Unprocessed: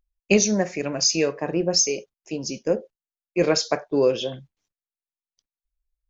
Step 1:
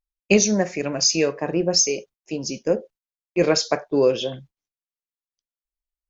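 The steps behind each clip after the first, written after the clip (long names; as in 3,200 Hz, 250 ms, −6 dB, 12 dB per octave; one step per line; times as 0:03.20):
noise gate −49 dBFS, range −14 dB
level +1.5 dB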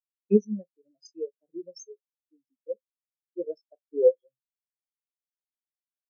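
every bin expanded away from the loudest bin 4 to 1
level −6 dB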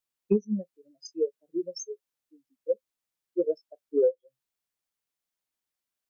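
downward compressor 16 to 1, threshold −27 dBFS, peak gain reduction 15 dB
level +7.5 dB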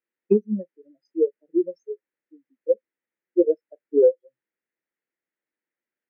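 loudspeaker in its box 200–2,200 Hz, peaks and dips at 230 Hz +3 dB, 340 Hz +7 dB, 500 Hz +4 dB, 720 Hz −7 dB, 1,100 Hz −9 dB, 1,900 Hz +6 dB
level +3.5 dB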